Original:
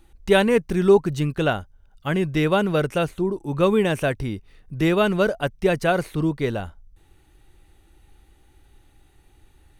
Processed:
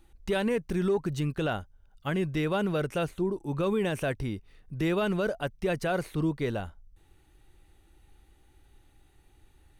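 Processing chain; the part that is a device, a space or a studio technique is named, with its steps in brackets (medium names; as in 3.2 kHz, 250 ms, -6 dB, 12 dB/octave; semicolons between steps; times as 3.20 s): soft clipper into limiter (saturation -5 dBFS, distortion -26 dB; peak limiter -14.5 dBFS, peak gain reduction 7.5 dB); trim -5 dB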